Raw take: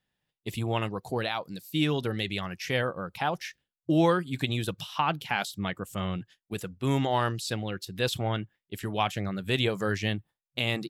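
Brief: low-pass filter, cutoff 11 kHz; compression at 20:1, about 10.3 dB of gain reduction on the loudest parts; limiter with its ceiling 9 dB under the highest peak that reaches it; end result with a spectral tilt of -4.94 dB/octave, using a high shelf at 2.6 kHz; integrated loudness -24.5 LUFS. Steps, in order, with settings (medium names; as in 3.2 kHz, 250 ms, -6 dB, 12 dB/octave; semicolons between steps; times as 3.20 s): low-pass 11 kHz; treble shelf 2.6 kHz -4.5 dB; compression 20:1, threshold -28 dBFS; trim +12 dB; peak limiter -12.5 dBFS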